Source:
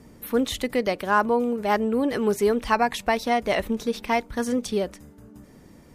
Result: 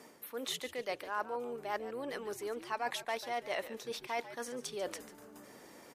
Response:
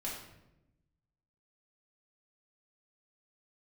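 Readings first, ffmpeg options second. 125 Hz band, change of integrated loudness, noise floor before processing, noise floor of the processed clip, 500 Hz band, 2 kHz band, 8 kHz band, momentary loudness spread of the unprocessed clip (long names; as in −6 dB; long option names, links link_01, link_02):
−21.0 dB, −15.0 dB, −51 dBFS, −57 dBFS, −15.0 dB, −13.0 dB, −8.0 dB, 5 LU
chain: -filter_complex "[0:a]areverse,acompressor=threshold=-35dB:ratio=8,areverse,highpass=490,asplit=4[link_01][link_02][link_03][link_04];[link_02]adelay=143,afreqshift=-91,volume=-13.5dB[link_05];[link_03]adelay=286,afreqshift=-182,volume=-24dB[link_06];[link_04]adelay=429,afreqshift=-273,volume=-34.4dB[link_07];[link_01][link_05][link_06][link_07]amix=inputs=4:normalize=0,volume=2.5dB"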